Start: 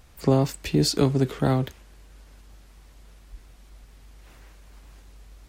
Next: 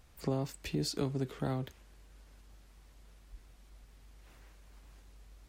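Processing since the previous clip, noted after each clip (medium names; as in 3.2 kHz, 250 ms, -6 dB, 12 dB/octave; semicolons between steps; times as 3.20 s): compression 1.5:1, threshold -30 dBFS, peak gain reduction 6 dB; trim -8 dB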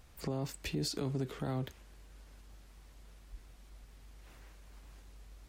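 peak limiter -28.5 dBFS, peak gain reduction 7.5 dB; trim +2 dB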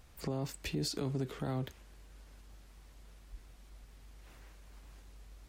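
no audible change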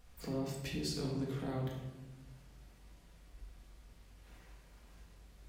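simulated room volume 570 m³, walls mixed, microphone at 1.8 m; trim -6 dB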